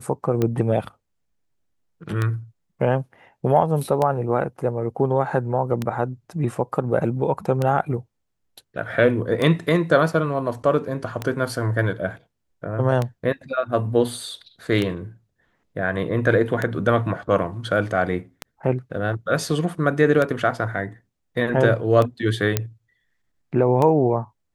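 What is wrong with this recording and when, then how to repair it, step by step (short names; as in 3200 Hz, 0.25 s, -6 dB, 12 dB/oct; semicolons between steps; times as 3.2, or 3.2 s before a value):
tick 33 1/3 rpm -10 dBFS
22.57 pop -4 dBFS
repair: de-click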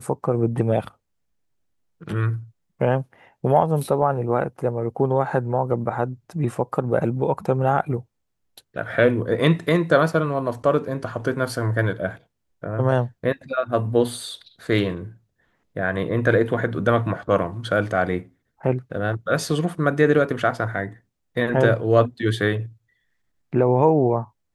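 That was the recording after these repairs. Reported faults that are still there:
none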